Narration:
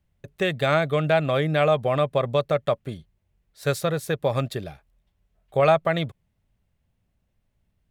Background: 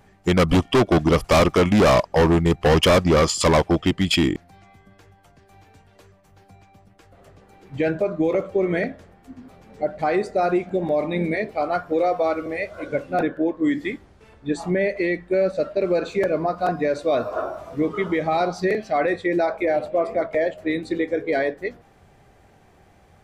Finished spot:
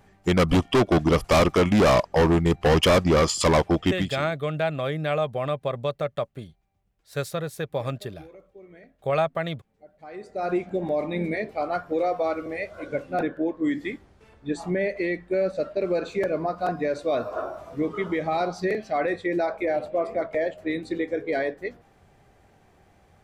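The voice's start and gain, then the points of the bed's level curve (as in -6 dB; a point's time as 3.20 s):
3.50 s, -5.0 dB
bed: 3.99 s -2.5 dB
4.27 s -26.5 dB
9.92 s -26.5 dB
10.53 s -4 dB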